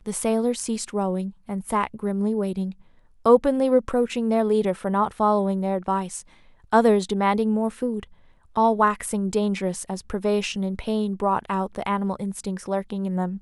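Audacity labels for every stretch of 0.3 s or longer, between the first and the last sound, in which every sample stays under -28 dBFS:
2.710000	3.260000	silence
6.200000	6.730000	silence
8.030000	8.560000	silence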